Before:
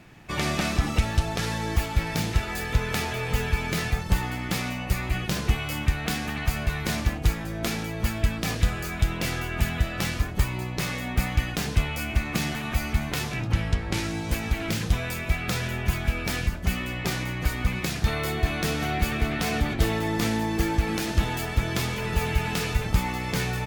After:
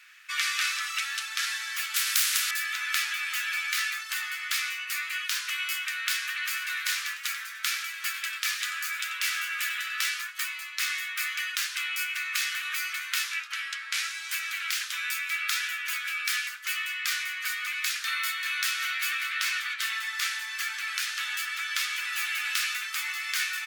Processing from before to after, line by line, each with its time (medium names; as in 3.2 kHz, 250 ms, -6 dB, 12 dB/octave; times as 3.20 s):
1.94–2.51 s: spectrum-flattening compressor 4:1
6.33–9.99 s: modulated delay 96 ms, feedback 39%, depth 204 cents, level -12 dB
19.39–21.95 s: treble shelf 9.2 kHz -4.5 dB
whole clip: steep high-pass 1.3 kHz 48 dB/octave; trim +3.5 dB